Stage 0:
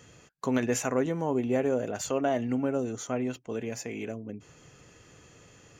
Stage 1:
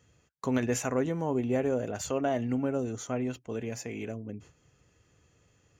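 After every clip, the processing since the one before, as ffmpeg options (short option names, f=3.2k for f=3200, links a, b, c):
-af "agate=range=-11dB:threshold=-50dB:ratio=16:detection=peak,equalizer=f=66:t=o:w=1.5:g=9.5,volume=-2dB"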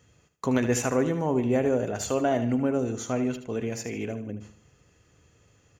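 -af "aecho=1:1:76|152|228|304:0.282|0.107|0.0407|0.0155,volume=4dB"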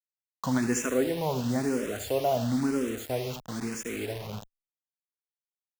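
-filter_complex "[0:a]acrusher=bits=5:mix=0:aa=0.000001,asplit=2[a][b];[b]afreqshift=1[c];[a][c]amix=inputs=2:normalize=1"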